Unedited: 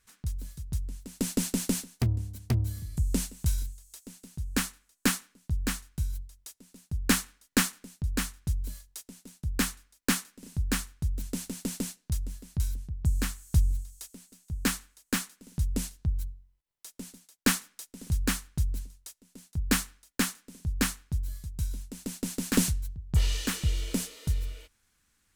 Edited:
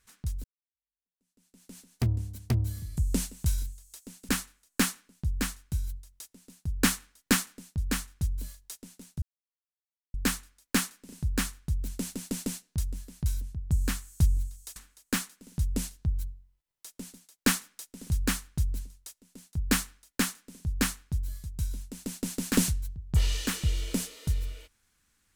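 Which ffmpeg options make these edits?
ffmpeg -i in.wav -filter_complex "[0:a]asplit=5[link_01][link_02][link_03][link_04][link_05];[link_01]atrim=end=0.44,asetpts=PTS-STARTPTS,afade=type=out:start_time=0.436:duration=0.004:curve=hsin[link_06];[link_02]atrim=start=0.44:end=4.292,asetpts=PTS-STARTPTS,afade=type=in:duration=1.6:curve=exp[link_07];[link_03]atrim=start=4.548:end=9.48,asetpts=PTS-STARTPTS,afade=type=out:start_time=4.928:duration=0.004:curve=hsin,apad=pad_dur=0.92[link_08];[link_04]atrim=start=9.48:end=14.102,asetpts=PTS-STARTPTS,afade=type=in:duration=0.004:curve=hsin[link_09];[link_05]atrim=start=14.758[link_10];[link_06][link_07]concat=n=2:v=0:a=1[link_11];[link_08][link_09]concat=n=2:v=0:a=1[link_12];[link_11][link_12]acrossfade=duration=0.004:curve1=hsin:curve2=hsin[link_13];[link_13][link_10]acrossfade=duration=0.004:curve1=hsin:curve2=hsin" out.wav

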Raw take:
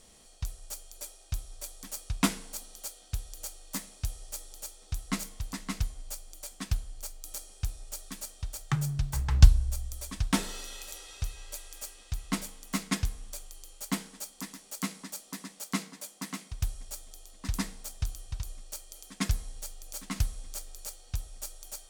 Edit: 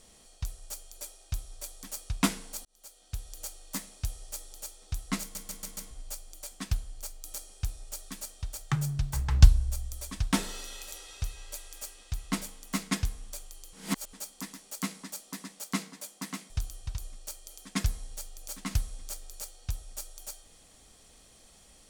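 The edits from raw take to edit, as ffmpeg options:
ffmpeg -i in.wav -filter_complex "[0:a]asplit=10[link_01][link_02][link_03][link_04][link_05][link_06][link_07][link_08][link_09][link_10];[link_01]atrim=end=2.65,asetpts=PTS-STARTPTS,afade=type=out:start_time=2.646:duration=0.004:curve=hsin[link_11];[link_02]atrim=start=2.65:end=5.352,asetpts=PTS-STARTPTS,afade=type=in:duration=0.7[link_12];[link_03]atrim=start=5.208:end=5.352[link_13];[link_04]atrim=start=5.208:end=5.352[link_14];[link_05]atrim=start=5.208:end=5.352[link_15];[link_06]atrim=start=5.208:end=5.352[link_16];[link_07]atrim=start=5.908:end=13.732[link_17];[link_08]atrim=start=13.728:end=14.132,asetpts=PTS-STARTPTS,areverse[link_18];[link_09]atrim=start=14.128:end=16.502[link_19];[link_10]atrim=start=17.948[link_20];[link_11][link_12]concat=n=2:v=0:a=1[link_21];[link_21][link_13]acrossfade=duration=0.004:curve1=hsin:curve2=hsin[link_22];[link_22][link_14]acrossfade=duration=0.004:curve1=hsin:curve2=hsin[link_23];[link_23][link_15]acrossfade=duration=0.004:curve1=hsin:curve2=hsin[link_24];[link_24][link_16]acrossfade=duration=0.004:curve1=hsin:curve2=hsin[link_25];[link_25][link_17]acrossfade=duration=0.004:curve1=hsin:curve2=hsin[link_26];[link_26][link_18]acrossfade=duration=0.004:curve1=hsin:curve2=hsin[link_27];[link_27][link_19]acrossfade=duration=0.004:curve1=hsin:curve2=hsin[link_28];[link_28][link_20]acrossfade=duration=0.004:curve1=hsin:curve2=hsin" out.wav

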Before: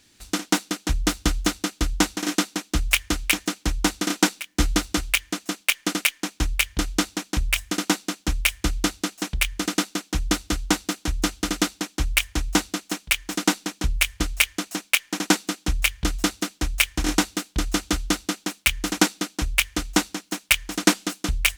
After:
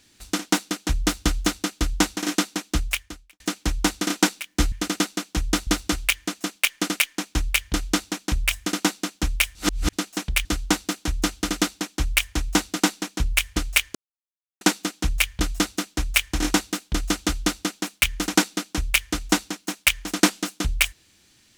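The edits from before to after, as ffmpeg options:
ffmpeg -i in.wav -filter_complex "[0:a]asplit=10[link_01][link_02][link_03][link_04][link_05][link_06][link_07][link_08][link_09][link_10];[link_01]atrim=end=3.4,asetpts=PTS-STARTPTS,afade=type=out:start_time=2.76:duration=0.64:curve=qua[link_11];[link_02]atrim=start=3.4:end=4.722,asetpts=PTS-STARTPTS,afade=type=in:duration=0.004:curve=hsin[link_12];[link_03]atrim=start=9.498:end=10.452[link_13];[link_04]atrim=start=4.718:end=8.602[link_14];[link_05]atrim=start=8.598:end=8.982,asetpts=PTS-STARTPTS,areverse[link_15];[link_06]atrim=start=8.978:end=9.502[link_16];[link_07]atrim=start=10.448:end=12.762[link_17];[link_08]atrim=start=13.398:end=14.59,asetpts=PTS-STARTPTS,afade=type=out:start_time=1.188:duration=0.004:curve=hsin[link_18];[link_09]atrim=start=14.59:end=15.25,asetpts=PTS-STARTPTS,volume=0[link_19];[link_10]atrim=start=15.25,asetpts=PTS-STARTPTS,afade=type=in:duration=0.004:curve=hsin[link_20];[link_11][link_12]concat=n=2:v=0:a=1[link_21];[link_21][link_13]acrossfade=duration=0.004:curve1=hsin:curve2=hsin[link_22];[link_22][link_14]acrossfade=duration=0.004:curve1=hsin:curve2=hsin[link_23];[link_23][link_15]acrossfade=duration=0.004:curve1=hsin:curve2=hsin[link_24];[link_24][link_16]acrossfade=duration=0.004:curve1=hsin:curve2=hsin[link_25];[link_25][link_17]acrossfade=duration=0.004:curve1=hsin:curve2=hsin[link_26];[link_18][link_19][link_20]concat=n=3:v=0:a=1[link_27];[link_26][link_27]acrossfade=duration=0.004:curve1=hsin:curve2=hsin" out.wav

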